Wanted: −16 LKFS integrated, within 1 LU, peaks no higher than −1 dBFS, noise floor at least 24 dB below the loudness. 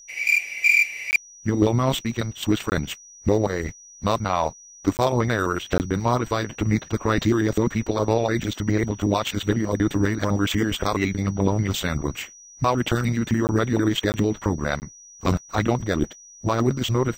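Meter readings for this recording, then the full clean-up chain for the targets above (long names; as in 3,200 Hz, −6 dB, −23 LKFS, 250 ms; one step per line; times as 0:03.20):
number of dropouts 7; longest dropout 19 ms; interfering tone 5,800 Hz; level of the tone −44 dBFS; integrated loudness −23.0 LKFS; sample peak −6.0 dBFS; target loudness −16.0 LKFS
→ repair the gap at 0:01.11/0:02.70/0:04.97/0:05.78/0:13.47/0:14.12/0:14.80, 19 ms
notch filter 5,800 Hz, Q 30
level +7 dB
brickwall limiter −1 dBFS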